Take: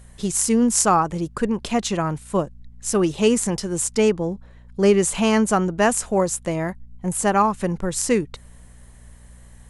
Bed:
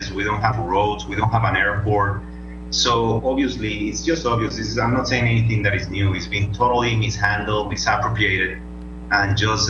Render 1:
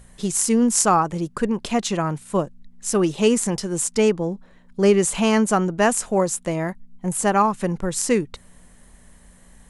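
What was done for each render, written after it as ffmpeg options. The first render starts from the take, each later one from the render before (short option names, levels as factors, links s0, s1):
-af "bandreject=f=60:t=h:w=4,bandreject=f=120:t=h:w=4"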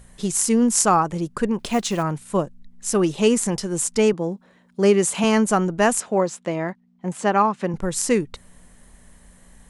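-filter_complex "[0:a]asettb=1/sr,asplit=3[s0][s1][s2];[s0]atrim=end=1.594[s3];[s1]atrim=start=1.59:end=2.03,asetpts=PTS-STARTPTS,afade=t=in:d=0.004:c=qsin,afade=t=out:st=0.436:d=0.004:c=qsin,acrusher=bits=6:mode=log:mix=0:aa=0.000001[s4];[s2]atrim=start=2.026[s5];[s3][s4]acrossfade=d=0.004:c1=hsin:c2=qsin[s6];[s6][s5]acrossfade=d=0.004:c1=qsin:c2=hsin,asettb=1/sr,asplit=3[s7][s8][s9];[s7]atrim=end=4.134[s10];[s8]atrim=start=4.13:end=5.24,asetpts=PTS-STARTPTS,afade=t=in:d=0.004:c=qsin,afade=t=out:st=1.106:d=0.004:c=qsin,highpass=140[s11];[s9]atrim=start=5.236[s12];[s10][s11]acrossfade=d=0.004:c1=hsin:c2=qsin[s13];[s13][s12]acrossfade=d=0.004:c1=qsin:c2=hsin,asettb=1/sr,asplit=3[s14][s15][s16];[s14]atrim=end=6.004[s17];[s15]atrim=start=6:end=7.74,asetpts=PTS-STARTPTS,afade=t=in:d=0.004:c=qsin,afade=t=out:st=1.736:d=0.004:c=qsin,highpass=170,lowpass=4700[s18];[s16]atrim=start=7.736[s19];[s17][s18]acrossfade=d=0.004:c1=hsin:c2=qsin[s20];[s20][s19]acrossfade=d=0.004:c1=qsin:c2=hsin"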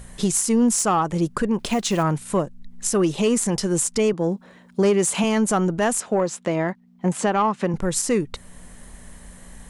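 -af "acontrast=79,alimiter=limit=0.251:level=0:latency=1:release=375"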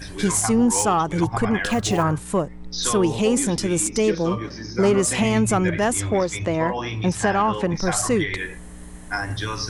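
-filter_complex "[1:a]volume=0.355[s0];[0:a][s0]amix=inputs=2:normalize=0"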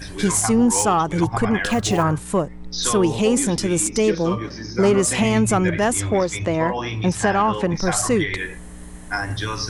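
-af "volume=1.19"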